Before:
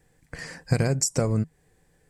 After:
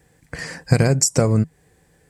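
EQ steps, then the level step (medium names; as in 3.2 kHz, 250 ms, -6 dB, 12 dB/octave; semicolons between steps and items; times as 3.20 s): high-pass 44 Hz; +7.0 dB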